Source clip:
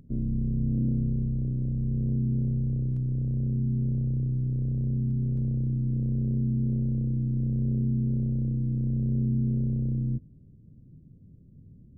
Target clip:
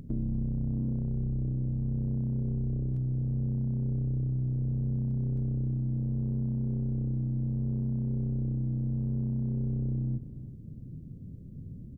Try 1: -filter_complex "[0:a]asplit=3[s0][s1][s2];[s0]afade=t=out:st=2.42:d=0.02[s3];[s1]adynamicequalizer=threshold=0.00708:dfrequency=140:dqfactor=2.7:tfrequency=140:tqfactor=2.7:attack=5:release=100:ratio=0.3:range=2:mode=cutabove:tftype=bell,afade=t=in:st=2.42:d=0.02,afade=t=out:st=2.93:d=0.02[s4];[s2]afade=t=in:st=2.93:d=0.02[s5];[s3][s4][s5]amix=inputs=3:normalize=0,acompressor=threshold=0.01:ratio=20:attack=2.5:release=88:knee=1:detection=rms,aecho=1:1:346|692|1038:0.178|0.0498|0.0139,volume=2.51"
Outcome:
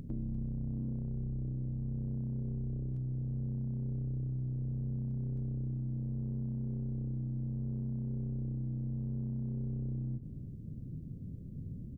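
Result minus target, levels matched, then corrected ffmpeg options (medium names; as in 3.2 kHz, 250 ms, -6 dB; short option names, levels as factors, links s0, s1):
compression: peak gain reduction +6 dB
-filter_complex "[0:a]asplit=3[s0][s1][s2];[s0]afade=t=out:st=2.42:d=0.02[s3];[s1]adynamicequalizer=threshold=0.00708:dfrequency=140:dqfactor=2.7:tfrequency=140:tqfactor=2.7:attack=5:release=100:ratio=0.3:range=2:mode=cutabove:tftype=bell,afade=t=in:st=2.42:d=0.02,afade=t=out:st=2.93:d=0.02[s4];[s2]afade=t=in:st=2.93:d=0.02[s5];[s3][s4][s5]amix=inputs=3:normalize=0,acompressor=threshold=0.0211:ratio=20:attack=2.5:release=88:knee=1:detection=rms,aecho=1:1:346|692|1038:0.178|0.0498|0.0139,volume=2.51"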